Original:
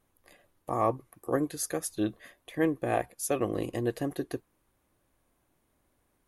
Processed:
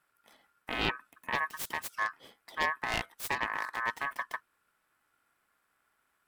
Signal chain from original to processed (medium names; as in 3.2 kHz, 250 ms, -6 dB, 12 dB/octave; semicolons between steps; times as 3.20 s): self-modulated delay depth 0.58 ms; ring modulator 1.4 kHz